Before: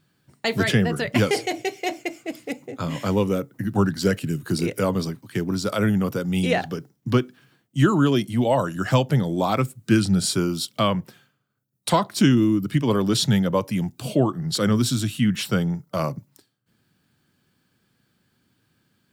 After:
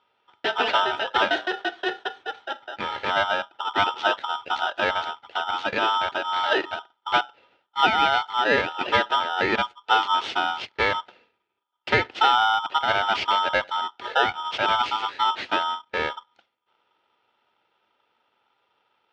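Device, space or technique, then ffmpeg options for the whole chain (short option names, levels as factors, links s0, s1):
ring modulator pedal into a guitar cabinet: -af "aeval=exprs='val(0)*sgn(sin(2*PI*1100*n/s))':c=same,highpass=110,equalizer=f=160:t=q:w=4:g=-10,equalizer=f=380:t=q:w=4:g=5,equalizer=f=1100:t=q:w=4:g=-7,lowpass=f=3500:w=0.5412,lowpass=f=3500:w=1.3066"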